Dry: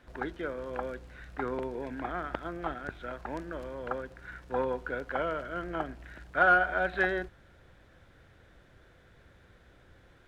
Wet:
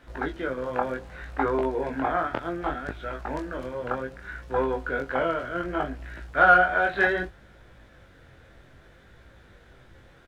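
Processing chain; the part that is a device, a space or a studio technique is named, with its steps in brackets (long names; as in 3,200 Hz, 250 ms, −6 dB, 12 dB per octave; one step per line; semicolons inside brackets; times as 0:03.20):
double-tracked vocal (double-tracking delay 15 ms −11.5 dB; chorus effect 0.65 Hz, delay 18 ms, depth 6.3 ms)
0:00.62–0:02.27: parametric band 830 Hz +5.5 dB 1.6 octaves
level +8.5 dB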